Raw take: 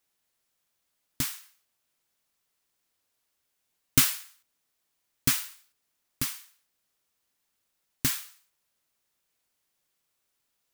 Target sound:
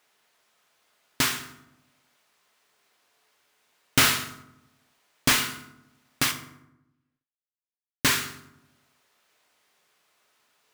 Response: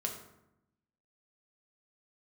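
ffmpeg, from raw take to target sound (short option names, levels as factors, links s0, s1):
-filter_complex "[0:a]asplit=2[s0][s1];[s1]highpass=f=720:p=1,volume=11.2,asoftclip=type=tanh:threshold=0.631[s2];[s0][s2]amix=inputs=2:normalize=0,lowpass=f=1900:p=1,volume=0.501,asettb=1/sr,asplit=3[s3][s4][s5];[s3]atrim=end=6.314[s6];[s4]atrim=start=6.31:end=8.05,asetpts=PTS-STARTPTS,afade=t=in:d=0.004:c=qsin,afade=t=out:st=1.736:d=0.004:c=qsin,aeval=exprs='sgn(val(0))*max(abs(val(0))-0.0141,0)':c=same[s7];[s5]atrim=start=8.046[s8];[s6][s7]acrossfade=d=0.004:c1=hsin:c2=qsin[s9];[s9][s8]acrossfade=d=0.004:c1=qsin:c2=hsin,asplit=2[s10][s11];[1:a]atrim=start_sample=2205[s12];[s11][s12]afir=irnorm=-1:irlink=0,volume=1.06[s13];[s10][s13]amix=inputs=2:normalize=0,volume=0.75"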